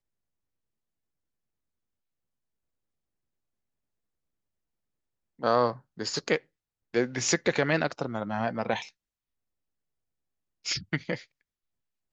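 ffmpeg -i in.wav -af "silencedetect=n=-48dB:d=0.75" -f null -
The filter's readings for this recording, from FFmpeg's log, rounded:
silence_start: 0.00
silence_end: 5.39 | silence_duration: 5.39
silence_start: 8.89
silence_end: 10.65 | silence_duration: 1.75
silence_start: 11.24
silence_end: 12.12 | silence_duration: 0.88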